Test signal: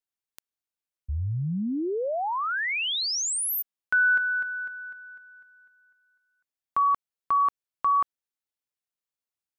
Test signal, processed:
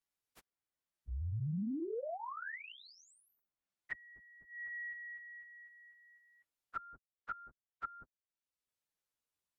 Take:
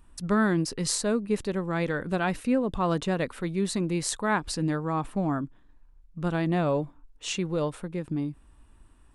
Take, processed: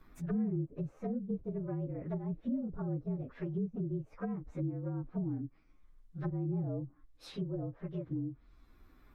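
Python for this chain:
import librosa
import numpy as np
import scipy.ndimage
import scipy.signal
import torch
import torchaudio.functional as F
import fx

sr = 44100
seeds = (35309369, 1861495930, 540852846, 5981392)

y = fx.partial_stretch(x, sr, pct=114)
y = fx.env_lowpass_down(y, sr, base_hz=310.0, full_db=-26.0)
y = fx.band_squash(y, sr, depth_pct=40)
y = y * librosa.db_to_amplitude(-5.5)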